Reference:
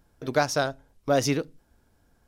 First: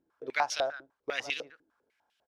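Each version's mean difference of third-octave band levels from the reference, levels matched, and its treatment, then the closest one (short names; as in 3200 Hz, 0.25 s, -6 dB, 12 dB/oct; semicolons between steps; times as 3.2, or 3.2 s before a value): 9.0 dB: tilt shelf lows -6.5 dB, about 1400 Hz; outdoor echo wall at 25 m, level -16 dB; stepped band-pass 10 Hz 330–3000 Hz; gain +5.5 dB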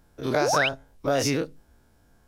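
4.5 dB: spectral dilation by 60 ms; compressor 3:1, threshold -21 dBFS, peak gain reduction 6.5 dB; painted sound rise, 0.41–0.69, 300–3300 Hz -24 dBFS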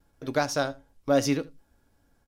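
1.5 dB: gate with hold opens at -55 dBFS; resonator 280 Hz, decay 0.17 s, harmonics all, mix 60%; on a send: echo 79 ms -22 dB; on the sum: gain +4 dB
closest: third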